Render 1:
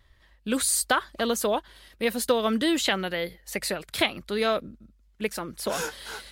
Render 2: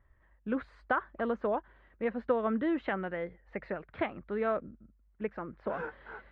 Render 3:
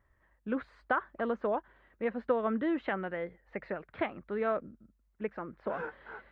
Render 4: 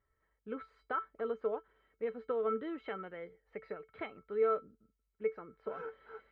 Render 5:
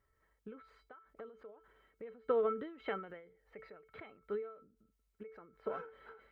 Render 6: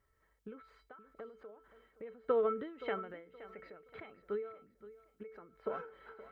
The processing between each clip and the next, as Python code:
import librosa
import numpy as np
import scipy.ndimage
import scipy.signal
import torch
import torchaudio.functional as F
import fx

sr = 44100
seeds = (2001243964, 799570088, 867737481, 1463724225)

y1 = scipy.signal.sosfilt(scipy.signal.butter(4, 1800.0, 'lowpass', fs=sr, output='sos'), x)
y1 = y1 * librosa.db_to_amplitude(-5.5)
y2 = fx.low_shelf(y1, sr, hz=89.0, db=-8.0)
y3 = fx.comb_fb(y2, sr, f0_hz=440.0, decay_s=0.15, harmonics='odd', damping=0.0, mix_pct=90)
y3 = y3 * librosa.db_to_amplitude(7.0)
y4 = fx.end_taper(y3, sr, db_per_s=100.0)
y4 = y4 * librosa.db_to_amplitude(3.5)
y5 = fx.echo_feedback(y4, sr, ms=522, feedback_pct=29, wet_db=-16)
y5 = y5 * librosa.db_to_amplitude(1.0)